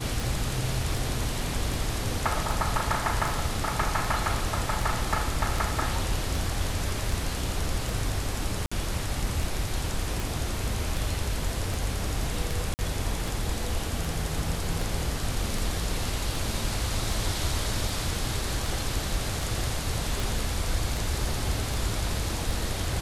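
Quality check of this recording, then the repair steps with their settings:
tick 78 rpm
8.66–8.71 s: dropout 55 ms
12.74–12.79 s: dropout 49 ms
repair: de-click; interpolate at 8.66 s, 55 ms; interpolate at 12.74 s, 49 ms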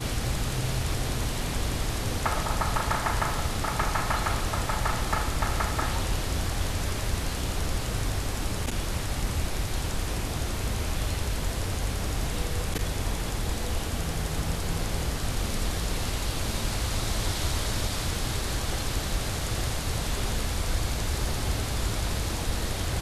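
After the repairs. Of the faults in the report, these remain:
nothing left

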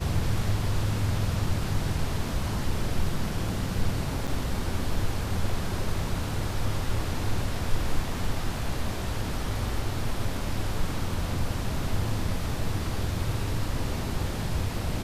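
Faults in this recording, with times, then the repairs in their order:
4.27–4.28 s: dropout 6.5 ms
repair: interpolate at 4.27 s, 6.5 ms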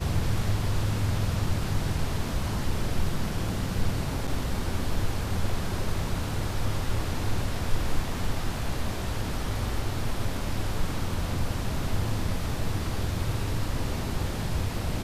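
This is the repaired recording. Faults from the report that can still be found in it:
nothing left

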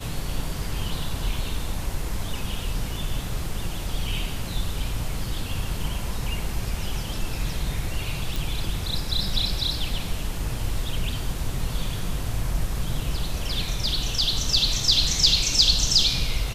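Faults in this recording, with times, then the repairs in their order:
8.36 s: pop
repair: de-click

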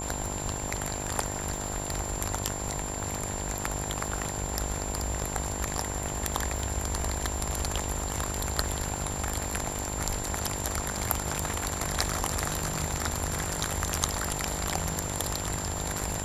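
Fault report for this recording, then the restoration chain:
buzz 50 Hz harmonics 21 -37 dBFS
crackle 29 per s -35 dBFS
whine 7.3 kHz -36 dBFS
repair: de-click; de-hum 50 Hz, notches 21; band-stop 7.3 kHz, Q 30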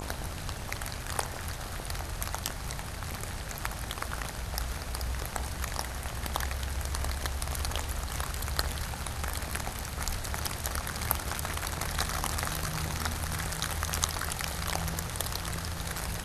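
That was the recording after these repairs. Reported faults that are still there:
nothing left

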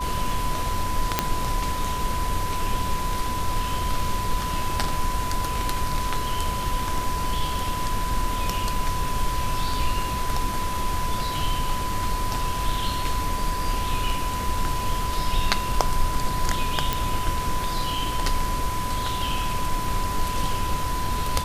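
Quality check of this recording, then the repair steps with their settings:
whine 1 kHz -28 dBFS
1.19 s: pop -2 dBFS
16.93 s: pop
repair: de-click; band-stop 1 kHz, Q 30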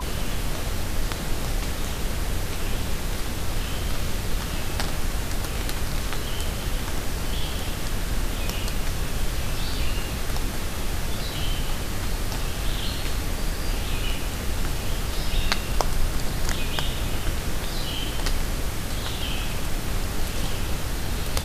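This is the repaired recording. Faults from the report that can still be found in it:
nothing left

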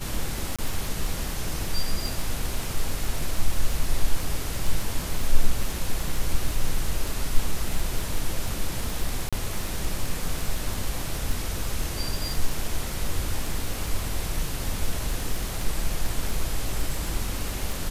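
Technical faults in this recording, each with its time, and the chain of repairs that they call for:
crackle 20 per s -25 dBFS
0.56–0.59 s: dropout 26 ms
9.29–9.33 s: dropout 36 ms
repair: de-click; interpolate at 0.56 s, 26 ms; interpolate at 9.29 s, 36 ms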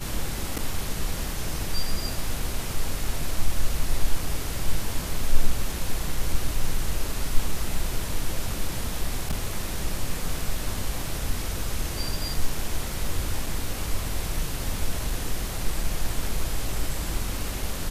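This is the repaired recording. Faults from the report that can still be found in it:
nothing left

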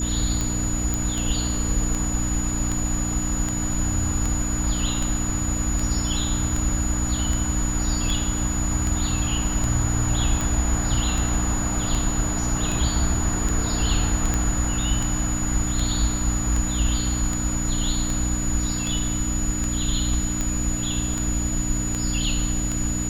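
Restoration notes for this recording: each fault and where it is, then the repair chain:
hum 60 Hz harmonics 5 -28 dBFS
tick 78 rpm -12 dBFS
whine 6.9 kHz -28 dBFS
0.94 s: pop
14.34 s: pop -10 dBFS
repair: de-click; de-hum 60 Hz, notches 5; band-stop 6.9 kHz, Q 30

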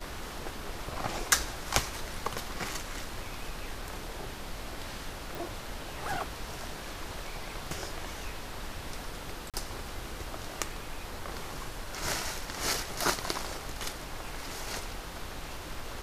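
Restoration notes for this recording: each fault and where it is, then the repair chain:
5.35 s: pop
9.50–9.54 s: dropout 37 ms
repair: de-click; interpolate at 9.50 s, 37 ms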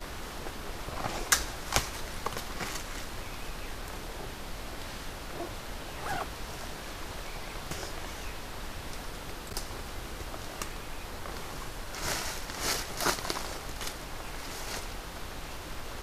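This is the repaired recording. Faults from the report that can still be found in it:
nothing left

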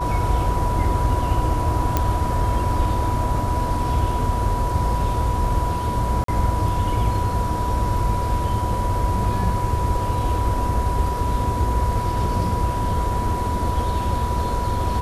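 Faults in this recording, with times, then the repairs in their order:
whine 980 Hz -25 dBFS
1.97 s: pop -5 dBFS
6.24–6.28 s: dropout 43 ms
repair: de-click; band-stop 980 Hz, Q 30; interpolate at 6.24 s, 43 ms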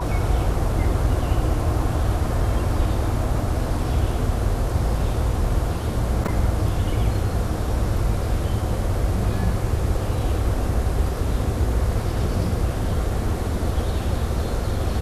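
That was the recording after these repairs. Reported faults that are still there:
nothing left

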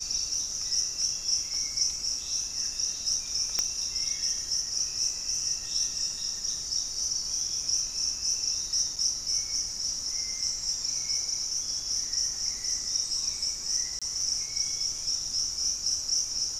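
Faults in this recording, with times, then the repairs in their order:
3.59 s: pop -11 dBFS
8.96–8.97 s: dropout 5.9 ms
13.99–14.02 s: dropout 26 ms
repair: de-click; interpolate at 8.96 s, 5.9 ms; interpolate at 13.99 s, 26 ms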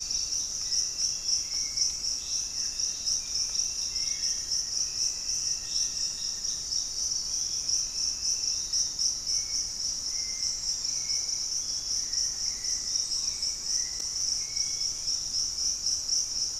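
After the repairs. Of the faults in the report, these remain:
nothing left

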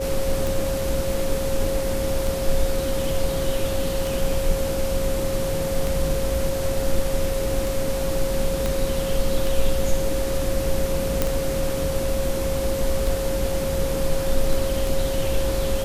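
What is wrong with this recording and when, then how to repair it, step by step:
tick 33 1/3 rpm
whine 540 Hz -25 dBFS
8.66 s: pop
11.22 s: pop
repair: de-click; band-stop 540 Hz, Q 30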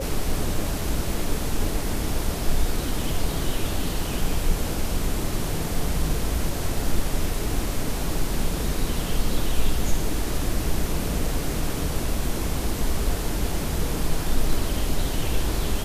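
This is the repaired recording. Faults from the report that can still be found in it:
8.66 s: pop

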